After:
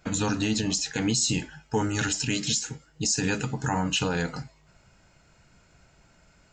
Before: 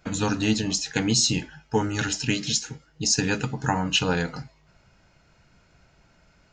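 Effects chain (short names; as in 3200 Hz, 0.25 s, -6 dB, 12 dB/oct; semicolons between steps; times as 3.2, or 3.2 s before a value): bell 7700 Hz +6.5 dB 0.24 oct, from 1.15 s +13 dB; limiter -15.5 dBFS, peak gain reduction 10.5 dB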